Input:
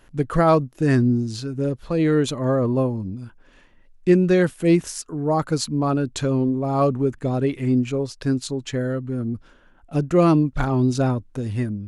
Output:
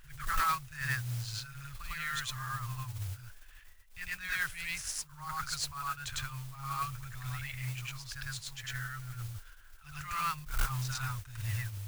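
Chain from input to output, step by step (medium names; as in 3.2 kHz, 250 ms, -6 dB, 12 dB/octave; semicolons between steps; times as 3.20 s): inverse Chebyshev band-stop 210–570 Hz, stop band 60 dB; treble shelf 2.1 kHz -6.5 dB; on a send: reverse echo 102 ms -4.5 dB; on the sum: modulation noise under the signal 13 dB; overload inside the chain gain 23.5 dB; attacks held to a fixed rise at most 140 dB/s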